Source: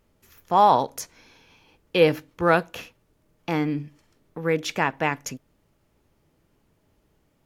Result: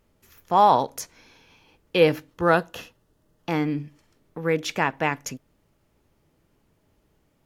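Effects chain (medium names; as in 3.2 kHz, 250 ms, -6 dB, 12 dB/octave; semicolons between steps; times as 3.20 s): 2.31–3.49 s: band-stop 2.3 kHz, Q 5.4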